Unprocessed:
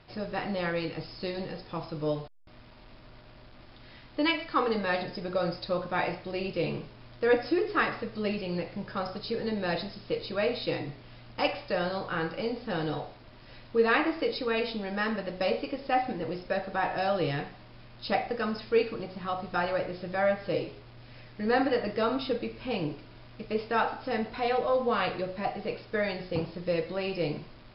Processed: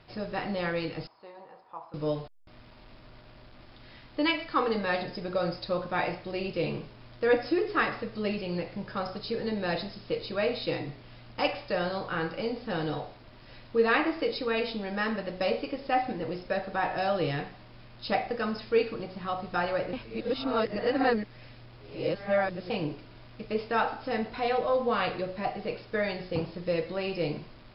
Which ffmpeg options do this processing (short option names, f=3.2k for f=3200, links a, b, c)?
-filter_complex "[0:a]asettb=1/sr,asplit=3[a][b][c];[a]atrim=end=1.074[d];[b]atrim=start=1.07:end=1.94,asetpts=PTS-STARTPTS,afade=t=in:d=0.004:c=qsin,afade=t=out:st=0.866:d=0.004:c=qsin,bandpass=f=930:t=q:w=3.2[e];[c]atrim=start=1.936[f];[d][e]acrossfade=d=0.004:c1=hsin:c2=qsin[g];[g][f]acrossfade=d=0.004:c1=qsin:c2=hsin,asplit=3[h][i][j];[h]atrim=end=19.932[k];[i]atrim=start=19.928:end=22.702,asetpts=PTS-STARTPTS,areverse[l];[j]atrim=start=22.698[m];[k][l]acrossfade=d=0.004:c1=hsin:c2=hsin[n];[n][m]acrossfade=d=0.004:c1=hsin:c2=hsin"